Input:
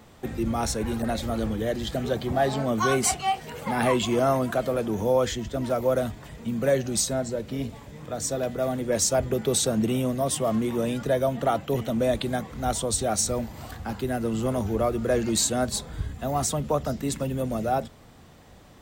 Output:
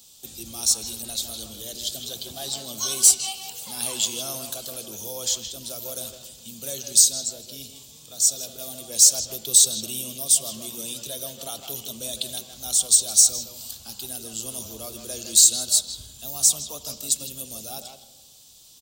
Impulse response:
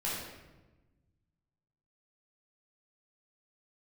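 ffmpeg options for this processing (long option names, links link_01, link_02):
-filter_complex "[0:a]asplit=2[link_01][link_02];[link_02]adelay=160,highpass=300,lowpass=3400,asoftclip=type=hard:threshold=-20.5dB,volume=-6dB[link_03];[link_01][link_03]amix=inputs=2:normalize=0,asplit=2[link_04][link_05];[1:a]atrim=start_sample=2205,lowpass=3500,adelay=72[link_06];[link_05][link_06]afir=irnorm=-1:irlink=0,volume=-18dB[link_07];[link_04][link_07]amix=inputs=2:normalize=0,aexciter=amount=13:drive=9.1:freq=3100,volume=-16.5dB"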